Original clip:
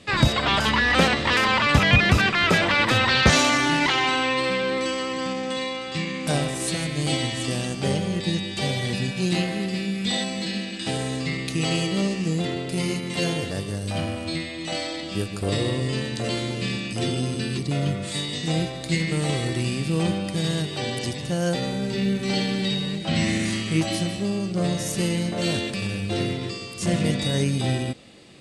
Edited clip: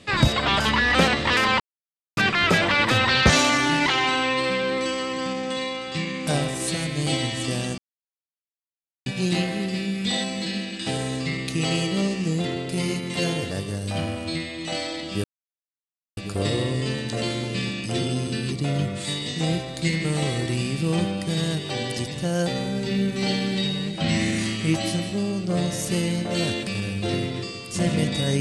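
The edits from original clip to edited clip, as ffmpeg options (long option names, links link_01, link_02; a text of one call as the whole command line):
ffmpeg -i in.wav -filter_complex "[0:a]asplit=6[link_01][link_02][link_03][link_04][link_05][link_06];[link_01]atrim=end=1.6,asetpts=PTS-STARTPTS,afade=type=out:start_time=1.596:duration=0.004:curve=hsin[link_07];[link_02]atrim=start=1.6:end=2.17,asetpts=PTS-STARTPTS,volume=0[link_08];[link_03]atrim=start=2.17:end=7.78,asetpts=PTS-STARTPTS,afade=type=in:duration=0.004:curve=hsin,afade=type=out:start_time=5.606:duration=0.004:curve=hsin[link_09];[link_04]atrim=start=7.78:end=9.06,asetpts=PTS-STARTPTS,volume=0[link_10];[link_05]atrim=start=9.06:end=15.24,asetpts=PTS-STARTPTS,afade=type=in:duration=0.004:curve=hsin,afade=type=out:start_time=6.176:duration=0.004:curve=hsin,apad=pad_dur=0.93[link_11];[link_06]atrim=start=15.24,asetpts=PTS-STARTPTS,afade=type=in:duration=0.004:curve=hsin[link_12];[link_07][link_08][link_09][link_10][link_11][link_12]concat=n=6:v=0:a=1" out.wav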